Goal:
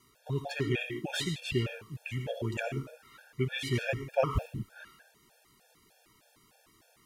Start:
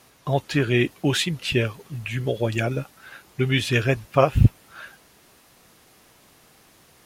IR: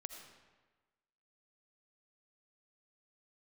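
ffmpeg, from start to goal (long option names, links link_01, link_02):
-filter_complex "[1:a]atrim=start_sample=2205,afade=type=out:start_time=0.22:duration=0.01,atrim=end_sample=10143[link_01];[0:a][link_01]afir=irnorm=-1:irlink=0,afftfilt=real='re*gt(sin(2*PI*3.3*pts/sr)*(1-2*mod(floor(b*sr/1024/460),2)),0)':imag='im*gt(sin(2*PI*3.3*pts/sr)*(1-2*mod(floor(b*sr/1024/460),2)),0)':win_size=1024:overlap=0.75,volume=-2.5dB"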